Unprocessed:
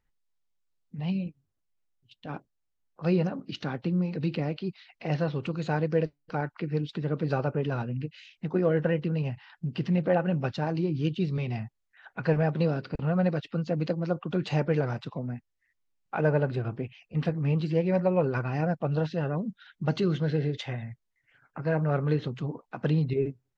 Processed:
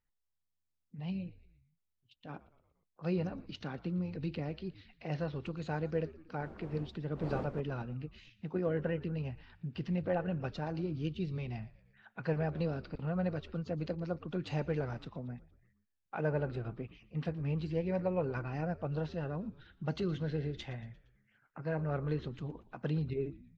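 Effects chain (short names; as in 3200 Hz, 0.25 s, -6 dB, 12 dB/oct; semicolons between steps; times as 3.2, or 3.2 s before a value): 6.39–7.59 wind noise 410 Hz -28 dBFS; frequency-shifting echo 0.116 s, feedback 53%, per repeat -82 Hz, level -18.5 dB; gain -8.5 dB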